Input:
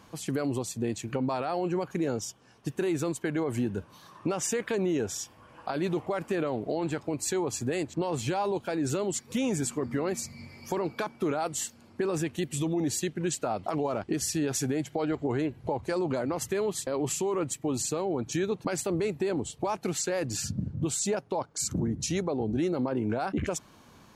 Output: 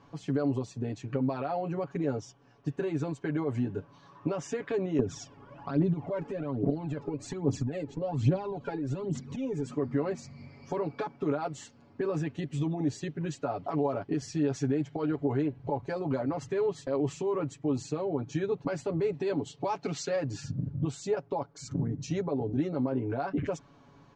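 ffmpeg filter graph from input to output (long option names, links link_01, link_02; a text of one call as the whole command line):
ffmpeg -i in.wav -filter_complex "[0:a]asettb=1/sr,asplit=3[link_01][link_02][link_03];[link_01]atrim=end=4.994[link_04];[link_02]atrim=start=4.99:end=9.74,asetpts=PTS-STARTPTS,afade=type=in:duration=0.004:curve=qsin,afade=type=out:start_time=4.746:duration=0.004:curve=qsin,equalizer=frequency=220:width=0.7:gain=11,acompressor=threshold=-27dB:ratio=12:attack=3.2:release=140:knee=1:detection=peak,aphaser=in_gain=1:out_gain=1:delay=2.5:decay=0.68:speed=1.2:type=triangular[link_05];[link_03]atrim=start=9.736[link_06];[link_04][link_05]acrossfade=duration=0.004:curve1=hsin:curve2=qsin[link_07];[link_07][link_06]acrossfade=duration=0.004:curve1=qsin:curve2=hsin,asettb=1/sr,asplit=3[link_08][link_09][link_10];[link_08]atrim=end=19.134[link_11];[link_09]atrim=start=19.13:end=20.16,asetpts=PTS-STARTPTS,afade=type=in:duration=0.004:curve=qsin,afade=type=out:start_time=1.026:duration=0.004:curve=qsin,highpass=110,equalizer=frequency=4600:width=0.62:gain=7.5[link_12];[link_10]atrim=start=20.156[link_13];[link_11][link_12]acrossfade=duration=0.004:curve1=hsin:curve2=qsin[link_14];[link_14][link_13]acrossfade=duration=0.004:curve1=qsin:curve2=hsin,lowpass=frequency=6500:width=0.5412,lowpass=frequency=6500:width=1.3066,highshelf=frequency=2100:gain=-11,aecho=1:1:7.1:0.86,volume=-3dB" out.wav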